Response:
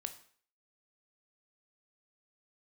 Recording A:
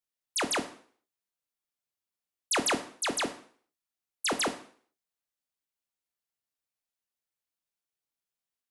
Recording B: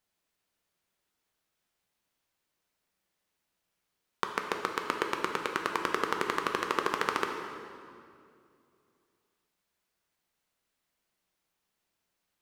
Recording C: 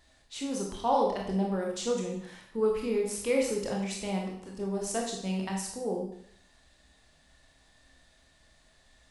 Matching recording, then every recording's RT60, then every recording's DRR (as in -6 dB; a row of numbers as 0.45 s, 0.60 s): A; 0.50 s, 2.5 s, 0.65 s; 7.5 dB, 3.0 dB, -1.0 dB